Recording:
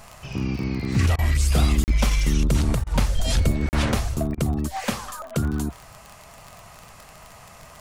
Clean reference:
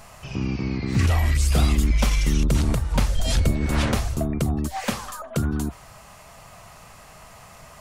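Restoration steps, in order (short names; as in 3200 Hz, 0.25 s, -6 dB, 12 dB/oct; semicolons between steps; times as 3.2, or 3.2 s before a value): de-click; interpolate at 1.84/3.69, 39 ms; interpolate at 1.16/2.84/4.35, 25 ms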